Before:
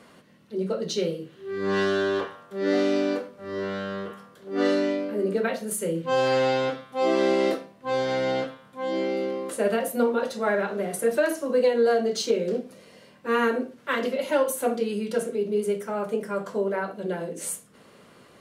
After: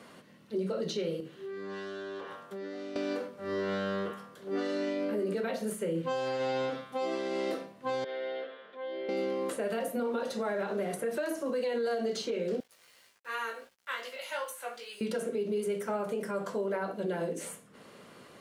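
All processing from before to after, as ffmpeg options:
-filter_complex "[0:a]asettb=1/sr,asplit=3[s0][s1][s2];[s0]atrim=end=1.204[s3];[s1]atrim=start=1.2:end=2.96,asetpts=PTS-STARTPTS,afade=t=in:d=0.004:c=qsin,afade=t=out:st=1.756:d=0.004:c=qsin,highpass=110,acompressor=threshold=0.0158:ratio=16:attack=3.2:release=140:knee=1:detection=peak[s4];[s2]atrim=start=2.956[s5];[s3][s4]acrossfade=d=0.004:c1=hsin:c2=qsin[s6];[s6][s5]acrossfade=d=0.004:c1=qsin:c2=hsin,asettb=1/sr,asplit=3[s7][s8][s9];[s7]atrim=end=8.044[s10];[s8]atrim=start=8.04:end=9.09,asetpts=PTS-STARTPTS,afade=t=in:d=0.004:c=qsin,afade=t=out:st=1.046:d=0.004:c=qsin,acompressor=threshold=0.00398:ratio=2:attack=3.2:release=140:knee=1:detection=peak,highpass=f=270:w=0.5412,highpass=f=270:w=1.3066,equalizer=f=290:t=q:w=4:g=-8,equalizer=f=420:t=q:w=4:g=10,equalizer=f=610:t=q:w=4:g=5,equalizer=f=890:t=q:w=4:g=-6,equalizer=f=1800:t=q:w=4:g=7,equalizer=f=3400:t=q:w=4:g=6,lowpass=f=3800:w=0.5412,lowpass=f=3800:w=1.3066[s11];[s9]atrim=start=9.086[s12];[s10][s11]acrossfade=d=0.004:c1=hsin:c2=qsin[s13];[s13][s12]acrossfade=d=0.004:c1=qsin:c2=hsin,asettb=1/sr,asplit=3[s14][s15][s16];[s14]atrim=end=12.604[s17];[s15]atrim=start=12.6:end=15.01,asetpts=PTS-STARTPTS,afade=t=in:d=0.004:c=qsin,afade=t=out:st=2.406:d=0.004:c=qsin,highpass=1200,aeval=exprs='val(0)*gte(abs(val(0)),0.002)':c=same,flanger=delay=15.5:depth=2.9:speed=2.6[s18];[s16]atrim=start=15.006[s19];[s17][s18]acrossfade=d=0.004:c1=hsin:c2=qsin[s20];[s20][s19]acrossfade=d=0.004:c1=qsin:c2=hsin,lowshelf=f=64:g=-9.5,acrossover=split=1200|3200[s21][s22][s23];[s21]acompressor=threshold=0.0501:ratio=4[s24];[s22]acompressor=threshold=0.00891:ratio=4[s25];[s23]acompressor=threshold=0.00562:ratio=4[s26];[s24][s25][s26]amix=inputs=3:normalize=0,alimiter=level_in=1.06:limit=0.0631:level=0:latency=1:release=60,volume=0.944"

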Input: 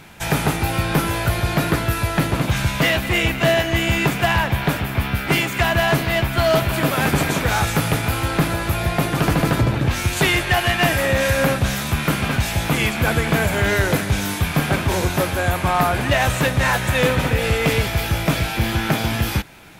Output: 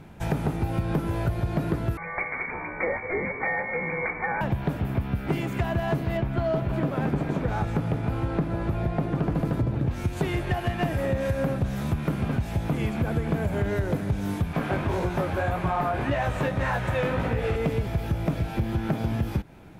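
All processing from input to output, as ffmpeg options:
-filter_complex "[0:a]asettb=1/sr,asplit=3[s0][s1][s2];[s0]atrim=end=1.974[s3];[s1]atrim=start=1.97:end=4.41,asetpts=PTS-STARTPTS,afade=t=in:d=0.004:c=qsin,afade=t=out:st=2.436:d=0.004:c=qsin,highpass=f=260:t=q:w=2.4,lowpass=f=2100:t=q:w=0.5098,lowpass=f=2100:t=q:w=0.6013,lowpass=f=2100:t=q:w=0.9,lowpass=f=2100:t=q:w=2.563,afreqshift=-2500[s4];[s2]atrim=start=4.406[s5];[s3][s4]acrossfade=d=0.004:c1=hsin:c2=qsin[s6];[s6][s5]acrossfade=d=0.004:c1=qsin:c2=hsin,asettb=1/sr,asplit=3[s7][s8][s9];[s7]atrim=end=6.174[s10];[s8]atrim=start=6.17:end=9.35,asetpts=PTS-STARTPTS,afade=t=in:d=0.004:c=qsin,afade=t=out:st=3.176:d=0.004:c=qsin,lowpass=f=3100:p=1,equalizer=f=82:t=o:w=0.44:g=-7[s11];[s9]atrim=start=9.346[s12];[s10][s11]acrossfade=d=0.004:c1=hsin:c2=qsin[s13];[s13][s12]acrossfade=d=0.004:c1=qsin:c2=hsin,asettb=1/sr,asplit=3[s14][s15][s16];[s14]atrim=end=14.534[s17];[s15]atrim=start=14.53:end=17.56,asetpts=PTS-STARTPTS,afade=t=in:d=0.004:c=qsin,afade=t=out:st=3.026:d=0.004:c=qsin,equalizer=f=1600:w=0.35:g=8,bandreject=f=50:t=h:w=6,bandreject=f=100:t=h:w=6,bandreject=f=150:t=h:w=6,bandreject=f=200:t=h:w=6,bandreject=f=250:t=h:w=6,bandreject=f=300:t=h:w=6,bandreject=f=350:t=h:w=6,flanger=delay=17:depth=4.4:speed=1.8[s18];[s16]atrim=start=17.556[s19];[s17][s18]acrossfade=d=0.004:c1=hsin:c2=qsin[s20];[s20][s19]acrossfade=d=0.004:c1=qsin:c2=hsin,tiltshelf=f=1100:g=9,acompressor=threshold=0.2:ratio=6,volume=0.398"

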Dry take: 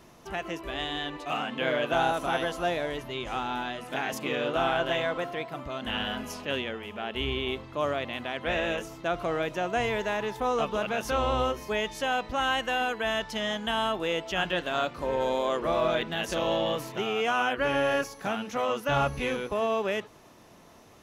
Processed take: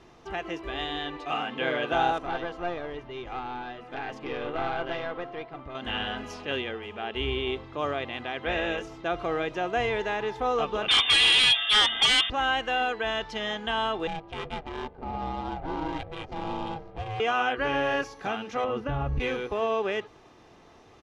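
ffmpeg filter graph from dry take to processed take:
-filter_complex "[0:a]asettb=1/sr,asplit=3[s0][s1][s2];[s0]atrim=end=2.184[s3];[s1]atrim=start=2.18:end=5.75,asetpts=PTS-STARTPTS,afade=t=in:d=0.004:c=qsin,afade=t=out:st=3.566:d=0.004:c=qsin,lowpass=f=2400:p=1,aeval=exprs='(tanh(10*val(0)+0.65)-tanh(0.65))/10':c=same[s4];[s2]atrim=start=5.746[s5];[s3][s4]acrossfade=d=0.004:c1=hsin:c2=qsin[s6];[s6][s5]acrossfade=d=0.004:c1=qsin:c2=hsin,asettb=1/sr,asplit=3[s7][s8][s9];[s7]atrim=end=10.884[s10];[s8]atrim=start=10.88:end=12.3,asetpts=PTS-STARTPTS,afade=t=in:d=0.004:c=qsin,afade=t=out:st=1.416:d=0.004:c=qsin,highpass=f=130:w=0.5412,highpass=f=130:w=1.3066,lowpass=f=3200:t=q:w=0.5098,lowpass=f=3200:t=q:w=0.6013,lowpass=f=3200:t=q:w=0.9,lowpass=f=3200:t=q:w=2.563,afreqshift=-3800,aeval=exprs='0.158*sin(PI/2*3.16*val(0)/0.158)':c=same[s11];[s9]atrim=start=12.296[s12];[s10][s11]acrossfade=d=0.004:c1=hsin:c2=qsin[s13];[s13][s12]acrossfade=d=0.004:c1=qsin:c2=hsin,asettb=1/sr,asplit=3[s14][s15][s16];[s14]atrim=end=14.074[s17];[s15]atrim=start=14.07:end=17.2,asetpts=PTS-STARTPTS,afade=t=in:d=0.004:c=qsin,afade=t=out:st=3.126:d=0.004:c=qsin,equalizer=f=1400:w=0.84:g=-9,aeval=exprs='val(0)*sin(2*PI*320*n/s)':c=same,adynamicsmooth=sensitivity=6:basefreq=800[s18];[s16]atrim=start=17.196[s19];[s17][s18]acrossfade=d=0.004:c1=hsin:c2=qsin[s20];[s20][s19]acrossfade=d=0.004:c1=qsin:c2=hsin,asettb=1/sr,asplit=3[s21][s22][s23];[s21]atrim=end=18.644[s24];[s22]atrim=start=18.64:end=19.2,asetpts=PTS-STARTPTS,afade=t=in:d=0.004:c=qsin,afade=t=out:st=0.556:d=0.004:c=qsin,aemphasis=mode=reproduction:type=riaa,acompressor=threshold=0.0631:ratio=10:attack=3.2:release=140:knee=1:detection=peak[s25];[s23]atrim=start=19.196[s26];[s24][s25]acrossfade=d=0.004:c1=hsin:c2=qsin[s27];[s27][s26]acrossfade=d=0.004:c1=qsin:c2=hsin,lowpass=4800,aecho=1:1:2.5:0.36"

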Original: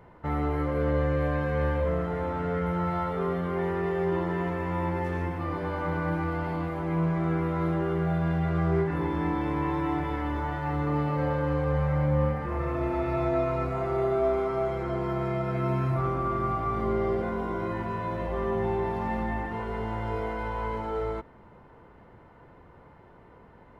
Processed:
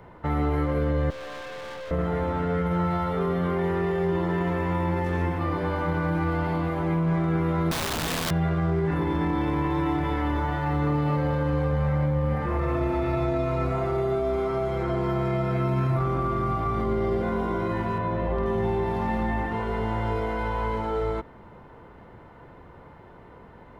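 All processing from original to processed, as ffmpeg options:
-filter_complex "[0:a]asettb=1/sr,asplit=3[s0][s1][s2];[s0]atrim=end=1.104[s3];[s1]atrim=start=1.1:end=1.91,asetpts=PTS-STARTPTS,afade=t=in:d=0.004:c=qsin,afade=t=out:st=0.806:d=0.004:c=qsin,highpass=500,aeval=exprs='(tanh(112*val(0)+0.45)-tanh(0.45))/112':c=same,acrusher=bits=8:mode=log:mix=0:aa=0.000001[s4];[s2]atrim=start=1.906[s5];[s3][s4]acrossfade=d=0.004:c1=hsin:c2=qsin[s6];[s6][s5]acrossfade=d=0.004:c1=qsin:c2=hsin,asettb=1/sr,asplit=3[s7][s8][s9];[s7]atrim=end=7.714[s10];[s8]atrim=start=7.71:end=8.31,asetpts=PTS-STARTPTS,afade=t=in:d=0.004:c=qsin,afade=t=out:st=0.596:d=0.004:c=qsin,lowshelf=f=180:g=-3.5,aeval=exprs='(mod(16.8*val(0)+1,2)-1)/16.8':c=same[s11];[s9]atrim=start=8.306[s12];[s10][s11]acrossfade=d=0.004:c1=hsin:c2=qsin[s13];[s13][s12]acrossfade=d=0.004:c1=qsin:c2=hsin,asettb=1/sr,asplit=3[s14][s15][s16];[s14]atrim=end=17.984[s17];[s15]atrim=start=17.98:end=18.46,asetpts=PTS-STARTPTS,afade=t=in:d=0.004:c=qsin,afade=t=out:st=0.476:d=0.004:c=qsin,aemphasis=mode=reproduction:type=75fm,asoftclip=type=hard:threshold=0.112[s18];[s16]atrim=start=18.456[s19];[s17][s18]acrossfade=d=0.004:c1=hsin:c2=qsin[s20];[s20][s19]acrossfade=d=0.004:c1=qsin:c2=hsin,equalizer=f=3600:t=o:w=0.35:g=3,acrossover=split=310|3000[s21][s22][s23];[s22]acompressor=threshold=0.0282:ratio=6[s24];[s21][s24][s23]amix=inputs=3:normalize=0,alimiter=limit=0.075:level=0:latency=1:release=10,volume=1.78"

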